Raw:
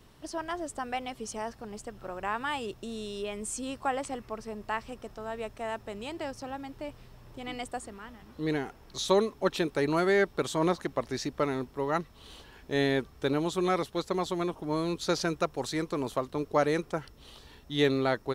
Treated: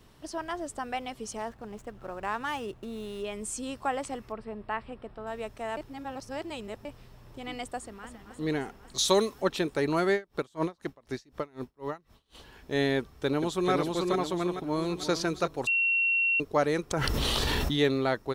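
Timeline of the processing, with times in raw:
0:01.37–0:03.25: running median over 9 samples
0:04.32–0:05.27: moving average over 7 samples
0:05.77–0:06.85: reverse
0:07.76–0:08.25: delay throw 270 ms, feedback 75%, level −9 dB
0:08.98–0:09.42: high-shelf EQ 3,300 Hz +10.5 dB
0:10.13–0:12.35: tremolo with a sine in dB 4 Hz, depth 29 dB
0:12.98–0:13.71: delay throw 440 ms, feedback 45%, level −2.5 dB
0:14.43–0:15.12: delay throw 350 ms, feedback 15%, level −10.5 dB
0:15.67–0:16.40: beep over 2,730 Hz −22.5 dBFS
0:16.91–0:17.79: envelope flattener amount 100%

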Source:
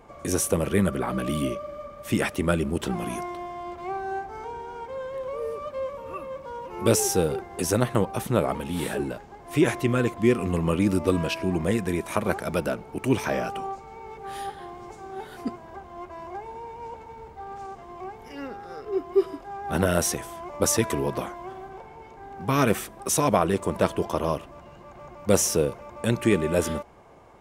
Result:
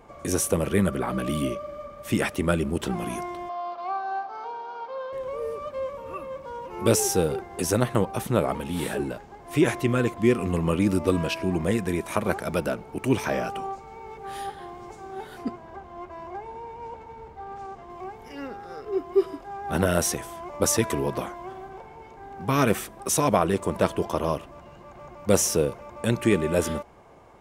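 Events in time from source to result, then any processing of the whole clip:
0:03.49–0:05.13: loudspeaker in its box 380–5,100 Hz, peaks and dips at 380 Hz −8 dB, 660 Hz +7 dB, 1,200 Hz +8 dB, 2,000 Hz −8 dB, 4,400 Hz +7 dB
0:15.38–0:17.90: high-shelf EQ 7,100 Hz −9 dB

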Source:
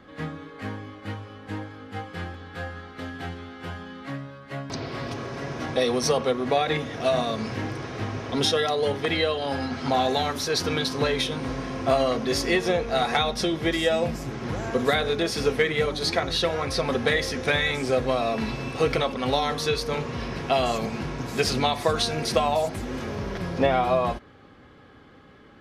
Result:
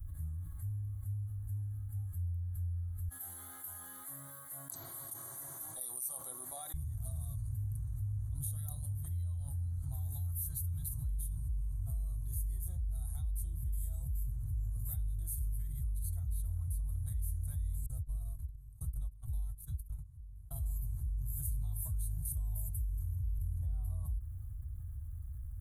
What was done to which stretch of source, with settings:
0:03.08–0:06.74: high-pass filter 340 Hz 24 dB per octave
0:17.86–0:20.60: noise gate −25 dBFS, range −47 dB
whole clip: dynamic equaliser 1,800 Hz, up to −6 dB, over −42 dBFS, Q 1.7; inverse Chebyshev band-stop filter 200–5,600 Hz, stop band 50 dB; envelope flattener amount 70%; level +1.5 dB

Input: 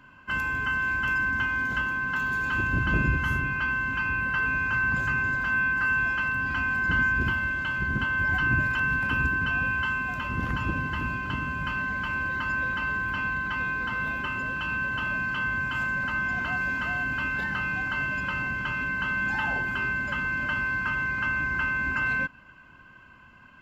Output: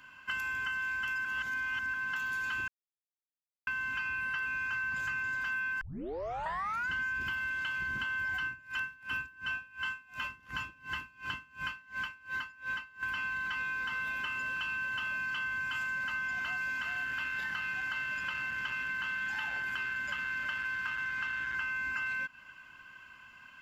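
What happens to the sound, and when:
0:01.25–0:01.94: reverse
0:02.68–0:03.67: silence
0:05.81: tape start 1.08 s
0:08.45–0:13.03: tremolo with a sine in dB 2.8 Hz, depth 29 dB
0:16.82–0:21.56: saturating transformer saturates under 530 Hz
whole clip: tilt shelving filter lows −9.5 dB, about 1,100 Hz; downward compressor, threshold −30 dBFS; notch filter 4,100 Hz, Q 23; level −3 dB

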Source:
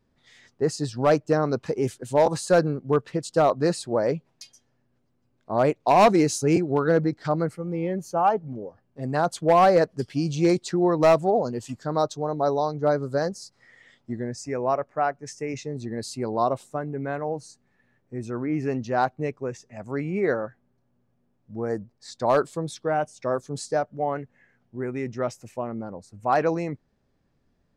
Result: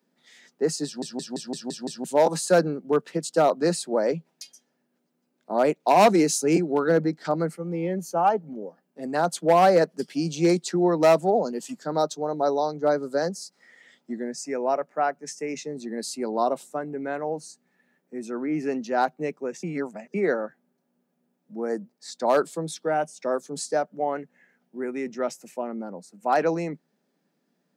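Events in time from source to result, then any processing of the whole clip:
0:00.85: stutter in place 0.17 s, 7 plays
0:19.63–0:20.14: reverse
whole clip: Butterworth high-pass 160 Hz 72 dB per octave; high-shelf EQ 8,400 Hz +9.5 dB; notch filter 1,100 Hz, Q 11

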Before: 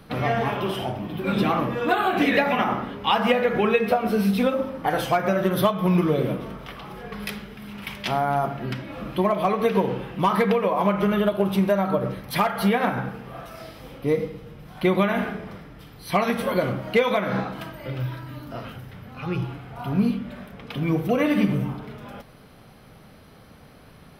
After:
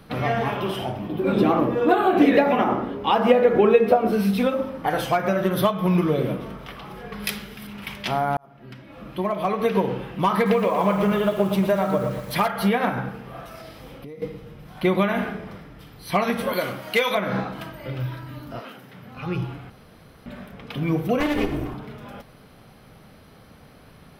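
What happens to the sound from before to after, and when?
0:01.08–0:04.13: drawn EQ curve 190 Hz 0 dB, 330 Hz +8 dB, 2,000 Hz −4 dB
0:07.24–0:07.67: high-shelf EQ 3,000 Hz +10 dB
0:08.37–0:09.72: fade in
0:10.34–0:12.48: feedback echo at a low word length 118 ms, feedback 55%, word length 7 bits, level −8.5 dB
0:13.56–0:14.22: downward compressor 12 to 1, threshold −35 dBFS
0:16.53–0:17.15: spectral tilt +3 dB per octave
0:18.59–0:19.14: high-pass filter 290 Hz → 98 Hz 24 dB per octave
0:19.70–0:20.26: fill with room tone
0:21.20–0:21.74: lower of the sound and its delayed copy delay 2.8 ms

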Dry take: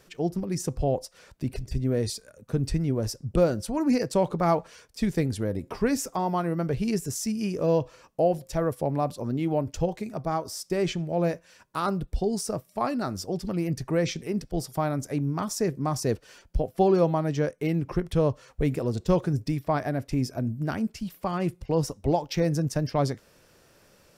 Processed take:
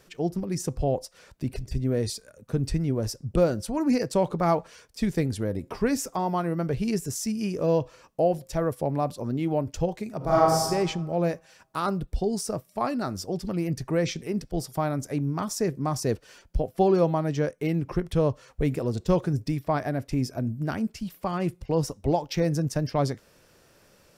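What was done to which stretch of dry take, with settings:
0:10.17–0:10.63: thrown reverb, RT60 1.3 s, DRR −8 dB

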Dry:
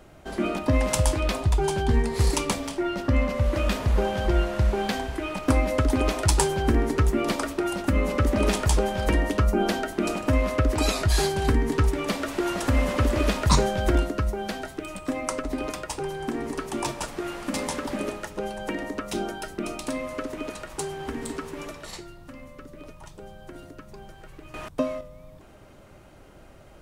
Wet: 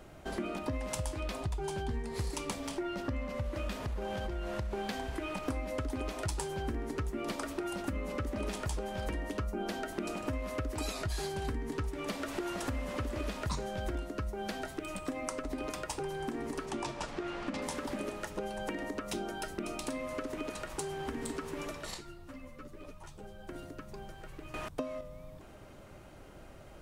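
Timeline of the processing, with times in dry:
0:03.75–0:04.73: downward compressor, threshold −23 dBFS
0:10.42–0:10.93: high-shelf EQ 7,900 Hz +5.5 dB
0:16.65–0:17.61: low-pass filter 7,600 Hz → 3,900 Hz
0:21.94–0:23.49: string-ensemble chorus
whole clip: downward compressor 5 to 1, threshold −32 dBFS; level −2 dB

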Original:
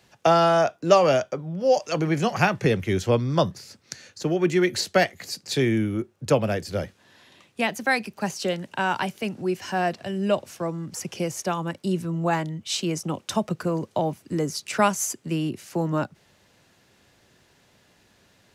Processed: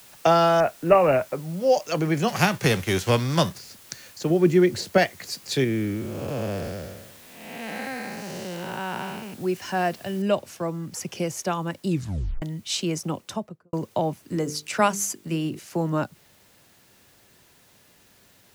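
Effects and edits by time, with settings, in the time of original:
0:00.60–0:01.53: bad sample-rate conversion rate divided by 8×, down none, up filtered
0:02.27–0:03.57: spectral envelope flattened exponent 0.6
0:04.30–0:04.98: tilt shelving filter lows +5.5 dB, about 720 Hz
0:05.64–0:09.34: spectrum smeared in time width 388 ms
0:10.22: noise floor change −50 dB −60 dB
0:11.88: tape stop 0.54 s
0:13.06–0:13.73: fade out and dull
0:14.25–0:15.59: mains-hum notches 50/100/150/200/250/300/350/400/450/500 Hz

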